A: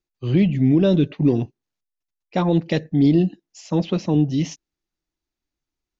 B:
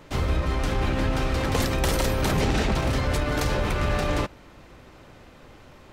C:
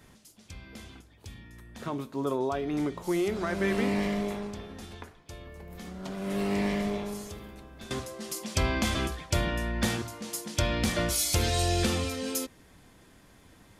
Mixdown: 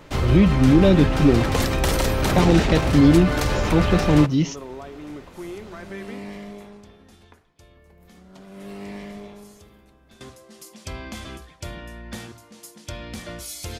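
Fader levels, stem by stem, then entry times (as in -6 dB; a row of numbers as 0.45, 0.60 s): +1.5, +2.5, -7.5 dB; 0.00, 0.00, 2.30 s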